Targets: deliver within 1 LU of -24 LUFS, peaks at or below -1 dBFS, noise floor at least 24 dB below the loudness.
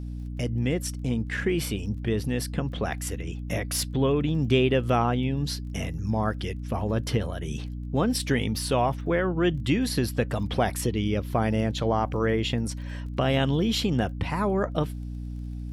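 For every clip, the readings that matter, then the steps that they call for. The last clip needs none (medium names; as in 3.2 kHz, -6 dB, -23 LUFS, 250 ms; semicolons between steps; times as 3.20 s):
tick rate 22 per s; hum 60 Hz; highest harmonic 300 Hz; hum level -31 dBFS; loudness -27.0 LUFS; peak level -10.0 dBFS; loudness target -24.0 LUFS
-> de-click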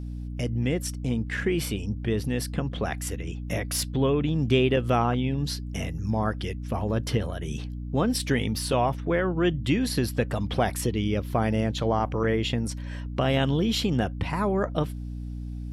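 tick rate 0 per s; hum 60 Hz; highest harmonic 300 Hz; hum level -31 dBFS
-> de-hum 60 Hz, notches 5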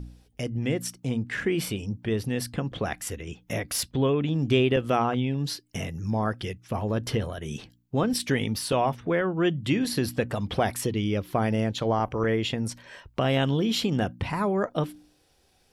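hum not found; loudness -27.5 LUFS; peak level -10.5 dBFS; loudness target -24.0 LUFS
-> trim +3.5 dB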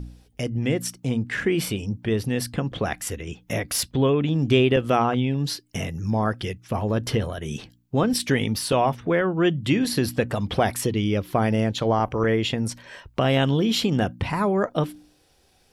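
loudness -24.0 LUFS; peak level -7.0 dBFS; noise floor -61 dBFS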